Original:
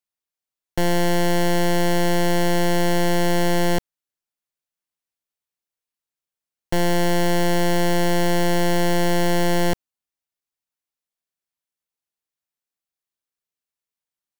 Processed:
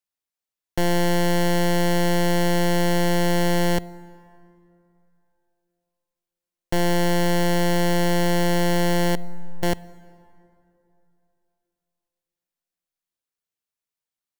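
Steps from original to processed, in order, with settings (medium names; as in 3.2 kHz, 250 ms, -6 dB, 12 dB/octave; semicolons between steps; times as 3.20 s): 9.15–9.63 s: spectral contrast enhancement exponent 3.8; plate-style reverb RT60 3 s, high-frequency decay 0.5×, DRR 19.5 dB; trim -1 dB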